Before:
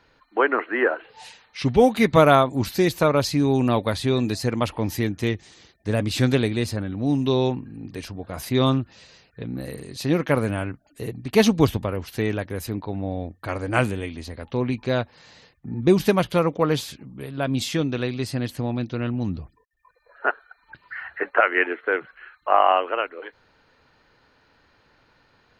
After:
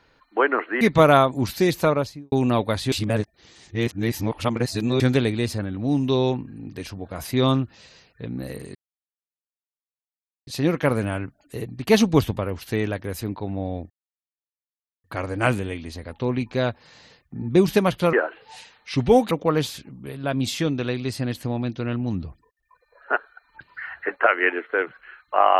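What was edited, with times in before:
0.81–1.99 move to 16.45
3–3.5 studio fade out
4.1–6.18 reverse
9.93 insert silence 1.72 s
13.36 insert silence 1.14 s

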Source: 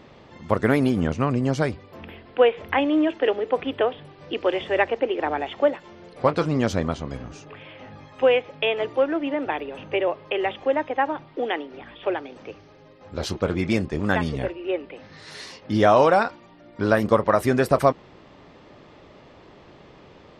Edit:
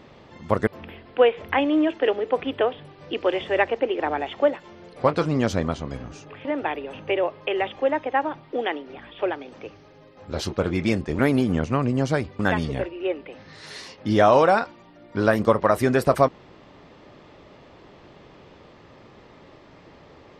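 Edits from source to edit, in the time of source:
0.67–1.87 move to 14.03
7.65–9.29 cut

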